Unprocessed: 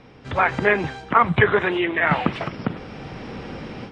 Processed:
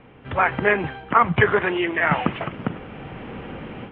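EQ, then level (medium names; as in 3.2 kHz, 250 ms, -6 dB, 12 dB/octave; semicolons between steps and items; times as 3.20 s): elliptic low-pass 3.1 kHz, stop band 70 dB; 0.0 dB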